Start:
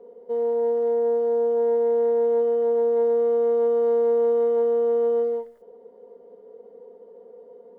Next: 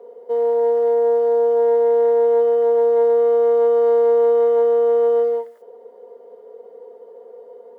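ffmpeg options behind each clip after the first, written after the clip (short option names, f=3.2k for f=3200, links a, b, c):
-af "highpass=480,volume=8.5dB"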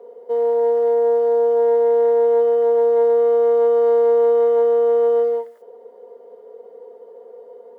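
-af anull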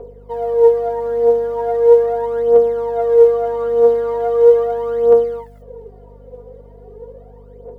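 -af "aphaser=in_gain=1:out_gain=1:delay=4.2:decay=0.73:speed=0.39:type=triangular,aeval=exprs='val(0)+0.01*(sin(2*PI*50*n/s)+sin(2*PI*2*50*n/s)/2+sin(2*PI*3*50*n/s)/3+sin(2*PI*4*50*n/s)/4+sin(2*PI*5*50*n/s)/5)':c=same,volume=-1dB"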